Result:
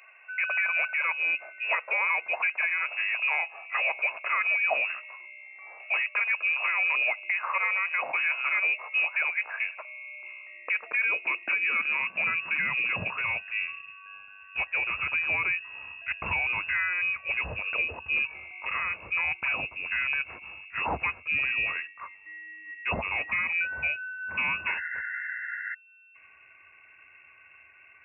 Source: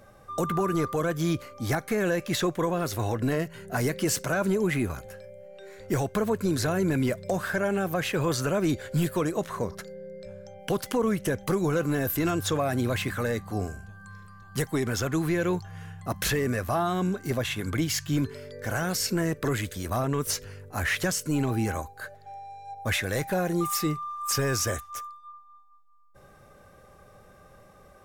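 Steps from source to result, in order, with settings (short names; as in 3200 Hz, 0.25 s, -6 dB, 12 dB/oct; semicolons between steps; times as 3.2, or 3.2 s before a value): painted sound noise, 24.66–25.75, 590–1300 Hz -33 dBFS; inverted band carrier 2700 Hz; high-pass sweep 650 Hz -> 69 Hz, 10.29–13.81; gain -2 dB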